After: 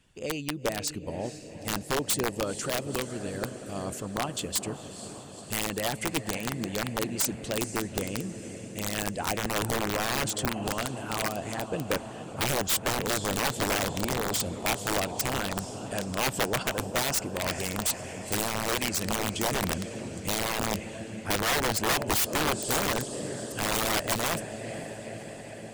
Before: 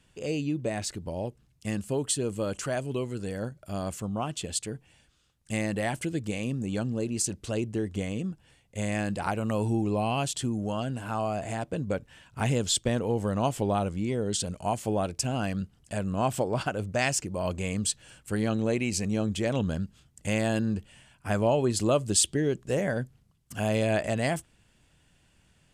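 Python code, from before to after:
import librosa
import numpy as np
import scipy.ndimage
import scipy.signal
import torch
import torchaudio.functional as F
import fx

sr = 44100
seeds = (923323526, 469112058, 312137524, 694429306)

y = fx.echo_diffused(x, sr, ms=478, feedback_pct=72, wet_db=-10)
y = (np.mod(10.0 ** (20.5 / 20.0) * y + 1.0, 2.0) - 1.0) / 10.0 ** (20.5 / 20.0)
y = fx.hpss(y, sr, part='percussive', gain_db=9)
y = y * librosa.db_to_amplitude(-6.5)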